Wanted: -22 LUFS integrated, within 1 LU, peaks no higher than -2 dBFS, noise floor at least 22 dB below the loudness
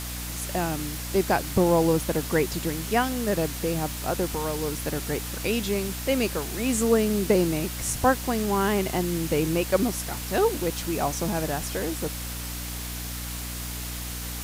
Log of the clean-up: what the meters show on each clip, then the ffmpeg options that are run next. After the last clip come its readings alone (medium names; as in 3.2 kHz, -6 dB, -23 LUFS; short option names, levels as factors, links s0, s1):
hum 60 Hz; highest harmonic 300 Hz; hum level -34 dBFS; noise floor -34 dBFS; noise floor target -48 dBFS; loudness -26.0 LUFS; peak level -7.0 dBFS; loudness target -22.0 LUFS
-> -af "bandreject=f=60:t=h:w=6,bandreject=f=120:t=h:w=6,bandreject=f=180:t=h:w=6,bandreject=f=240:t=h:w=6,bandreject=f=300:t=h:w=6"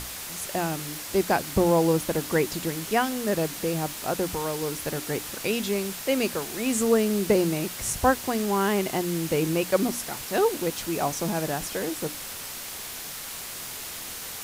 hum not found; noise floor -37 dBFS; noise floor target -49 dBFS
-> -af "afftdn=nr=12:nf=-37"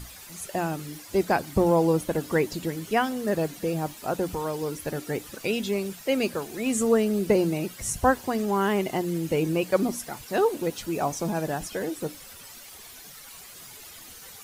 noise floor -46 dBFS; noise floor target -49 dBFS
-> -af "afftdn=nr=6:nf=-46"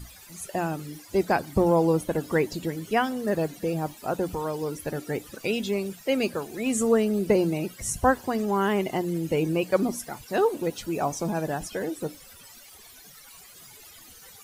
noise floor -49 dBFS; loudness -27.0 LUFS; peak level -7.5 dBFS; loudness target -22.0 LUFS
-> -af "volume=1.78"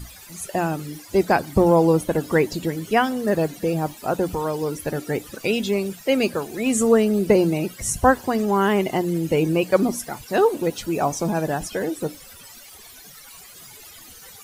loudness -22.0 LUFS; peak level -2.5 dBFS; noise floor -44 dBFS